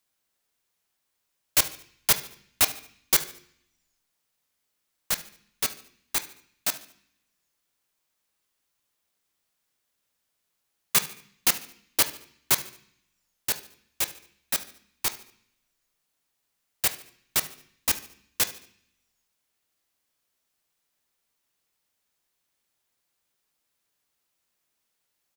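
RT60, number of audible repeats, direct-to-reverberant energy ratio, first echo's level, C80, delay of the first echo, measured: 0.60 s, 3, 10.0 dB, -18.0 dB, 18.0 dB, 73 ms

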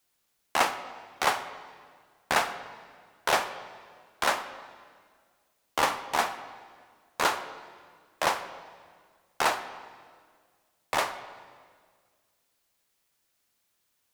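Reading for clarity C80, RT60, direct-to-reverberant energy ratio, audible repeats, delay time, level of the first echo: 13.0 dB, 1.8 s, 10.0 dB, no echo, no echo, no echo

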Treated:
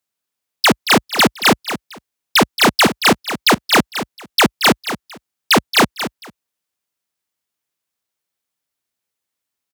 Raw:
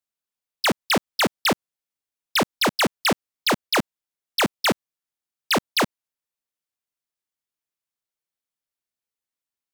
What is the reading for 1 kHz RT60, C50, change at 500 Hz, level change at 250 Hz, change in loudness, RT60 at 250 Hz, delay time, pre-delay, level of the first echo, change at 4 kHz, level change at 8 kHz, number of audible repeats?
no reverb, no reverb, +7.0 dB, +9.0 dB, +8.5 dB, no reverb, 227 ms, no reverb, -11.0 dB, +9.0 dB, +9.0 dB, 2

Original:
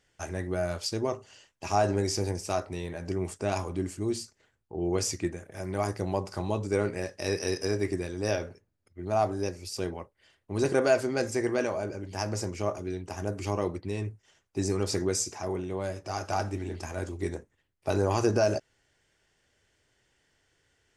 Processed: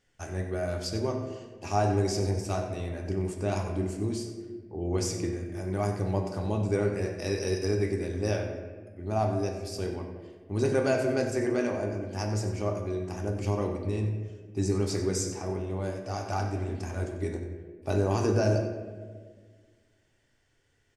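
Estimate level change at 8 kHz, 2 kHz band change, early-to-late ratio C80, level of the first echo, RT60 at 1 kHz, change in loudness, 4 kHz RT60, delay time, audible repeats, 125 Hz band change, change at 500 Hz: -3.0 dB, -2.0 dB, 6.5 dB, -12.0 dB, 1.3 s, 0.0 dB, 0.90 s, 93 ms, 1, +4.0 dB, -0.5 dB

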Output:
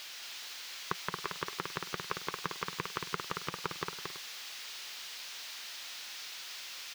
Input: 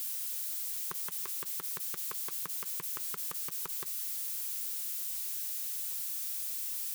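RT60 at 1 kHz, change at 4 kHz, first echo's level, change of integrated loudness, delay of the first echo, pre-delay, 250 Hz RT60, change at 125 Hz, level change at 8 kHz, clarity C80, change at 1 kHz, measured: no reverb, +6.5 dB, -5.0 dB, -6.0 dB, 227 ms, no reverb, no reverb, +12.0 dB, -8.0 dB, no reverb, +11.0 dB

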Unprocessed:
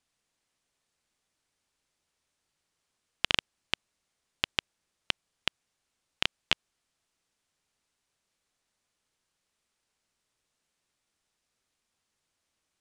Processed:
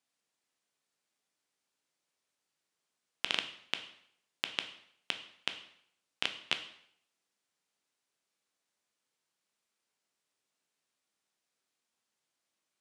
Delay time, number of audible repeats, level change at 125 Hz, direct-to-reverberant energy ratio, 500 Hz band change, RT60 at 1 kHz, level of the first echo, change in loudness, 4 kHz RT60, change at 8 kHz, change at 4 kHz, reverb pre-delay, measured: no echo, no echo, -11.5 dB, 7.0 dB, -4.0 dB, 0.65 s, no echo, -4.5 dB, 0.60 s, -4.5 dB, -4.0 dB, 6 ms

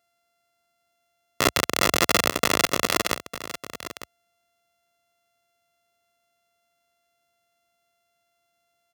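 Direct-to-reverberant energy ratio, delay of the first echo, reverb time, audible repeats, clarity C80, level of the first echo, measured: no reverb, 903 ms, no reverb, 1, no reverb, -14.0 dB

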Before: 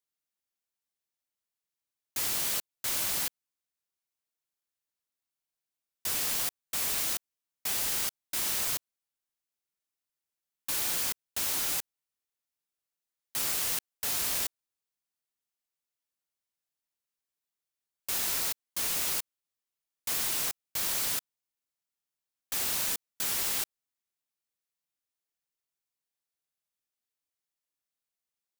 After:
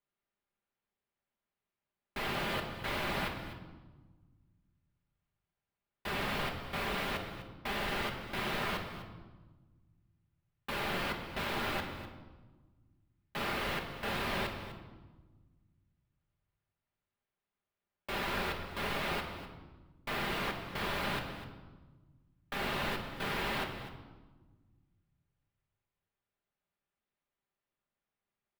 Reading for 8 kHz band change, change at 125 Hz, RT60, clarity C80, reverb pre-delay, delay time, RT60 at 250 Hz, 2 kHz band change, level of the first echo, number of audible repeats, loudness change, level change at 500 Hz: -21.5 dB, +10.0 dB, 1.3 s, 8.0 dB, 5 ms, 250 ms, 2.1 s, +3.5 dB, -14.5 dB, 1, -7.0 dB, +8.0 dB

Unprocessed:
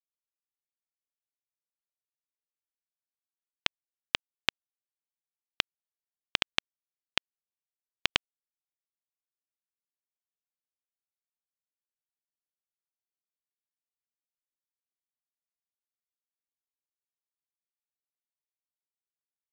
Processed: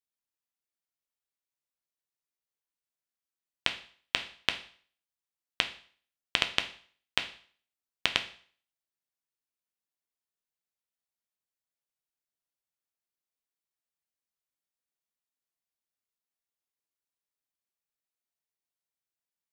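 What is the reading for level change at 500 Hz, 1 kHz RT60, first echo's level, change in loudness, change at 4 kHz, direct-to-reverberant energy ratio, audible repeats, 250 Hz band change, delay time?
+1.0 dB, 0.50 s, no echo, +0.5 dB, +0.5 dB, 6.0 dB, no echo, +0.5 dB, no echo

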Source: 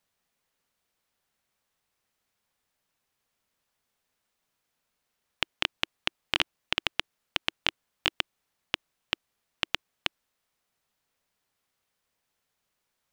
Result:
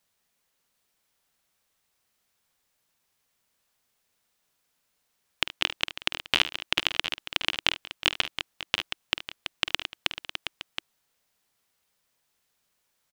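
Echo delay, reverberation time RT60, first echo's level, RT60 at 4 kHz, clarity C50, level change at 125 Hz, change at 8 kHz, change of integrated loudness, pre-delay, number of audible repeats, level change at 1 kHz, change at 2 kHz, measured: 49 ms, no reverb, -13.0 dB, no reverb, no reverb, +2.0 dB, +6.0 dB, +3.5 dB, no reverb, 4, +2.5 dB, +3.5 dB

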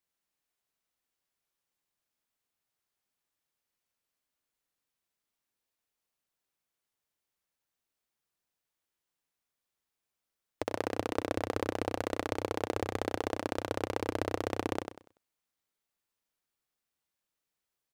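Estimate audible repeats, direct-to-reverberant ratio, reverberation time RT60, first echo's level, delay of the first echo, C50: 3, no reverb, no reverb, -7.0 dB, 96 ms, no reverb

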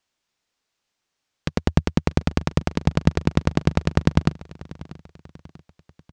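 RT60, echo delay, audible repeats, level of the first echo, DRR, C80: no reverb, 640 ms, 3, -19.5 dB, no reverb, no reverb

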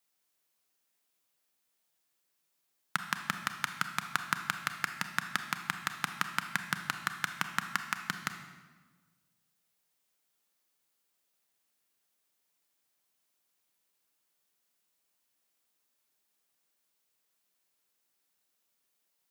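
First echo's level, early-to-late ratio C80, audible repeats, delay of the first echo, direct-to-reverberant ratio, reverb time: no echo, 10.0 dB, no echo, no echo, 7.0 dB, 1.4 s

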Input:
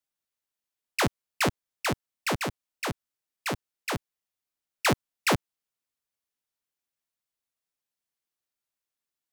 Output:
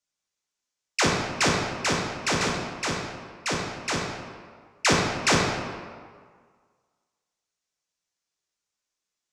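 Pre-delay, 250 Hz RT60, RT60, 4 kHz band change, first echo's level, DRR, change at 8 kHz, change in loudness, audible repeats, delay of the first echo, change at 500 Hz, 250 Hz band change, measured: 6 ms, 1.6 s, 1.8 s, +6.5 dB, no echo, -2.5 dB, +8.0 dB, +4.5 dB, no echo, no echo, +4.5 dB, +4.0 dB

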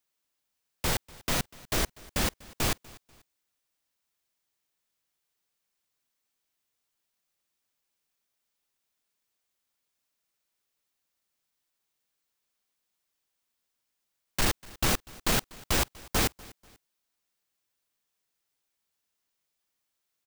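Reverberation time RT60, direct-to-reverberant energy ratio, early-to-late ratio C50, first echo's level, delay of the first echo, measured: no reverb, no reverb, no reverb, -22.5 dB, 244 ms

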